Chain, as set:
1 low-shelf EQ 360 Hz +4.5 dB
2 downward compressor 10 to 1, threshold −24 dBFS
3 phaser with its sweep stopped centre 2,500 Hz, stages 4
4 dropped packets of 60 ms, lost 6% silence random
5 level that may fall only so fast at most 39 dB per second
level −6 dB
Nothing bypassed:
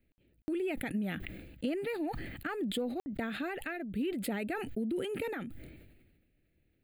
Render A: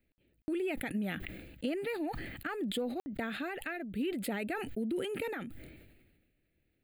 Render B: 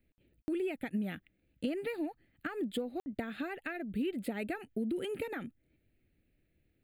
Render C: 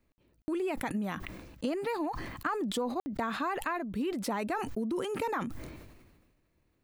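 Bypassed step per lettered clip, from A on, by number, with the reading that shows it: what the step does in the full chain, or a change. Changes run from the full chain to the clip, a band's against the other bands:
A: 1, 125 Hz band −1.5 dB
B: 5, 8 kHz band −3.5 dB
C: 3, 1 kHz band +8.0 dB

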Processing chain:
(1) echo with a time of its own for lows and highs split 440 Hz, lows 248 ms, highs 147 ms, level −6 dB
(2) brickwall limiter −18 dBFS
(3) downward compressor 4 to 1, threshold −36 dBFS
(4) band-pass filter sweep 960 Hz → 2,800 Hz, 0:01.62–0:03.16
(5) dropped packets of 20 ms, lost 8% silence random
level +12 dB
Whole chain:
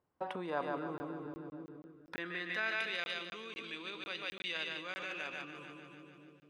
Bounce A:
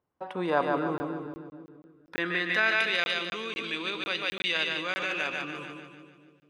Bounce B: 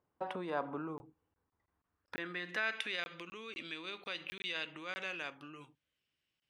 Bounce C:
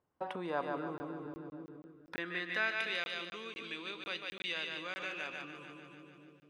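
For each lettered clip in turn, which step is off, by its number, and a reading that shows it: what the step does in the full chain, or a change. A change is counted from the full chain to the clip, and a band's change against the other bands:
3, average gain reduction 8.0 dB
1, change in momentary loudness spread −4 LU
2, average gain reduction 2.5 dB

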